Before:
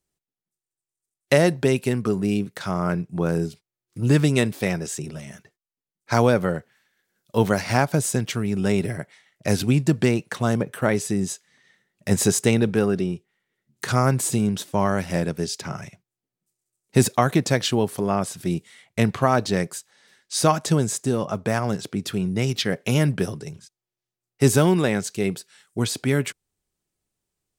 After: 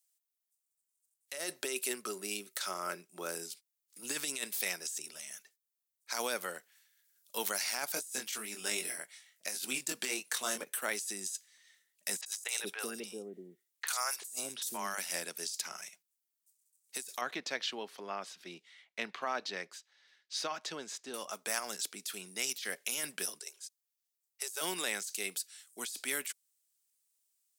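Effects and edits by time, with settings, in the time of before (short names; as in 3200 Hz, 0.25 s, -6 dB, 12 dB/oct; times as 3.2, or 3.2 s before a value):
1.36–3.35 small resonant body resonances 380/570/1300 Hz, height 10 dB, ringing for 85 ms
7.94–10.64 doubler 23 ms -4 dB
12.21–14.98 three bands offset in time mids, highs, lows 50/380 ms, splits 570/3500 Hz
17.21–21.14 air absorption 240 m
23.39–24.61 Chebyshev high-pass 360 Hz, order 6
whole clip: HPF 200 Hz 24 dB/oct; differentiator; negative-ratio compressor -38 dBFS, ratio -1; gain +1 dB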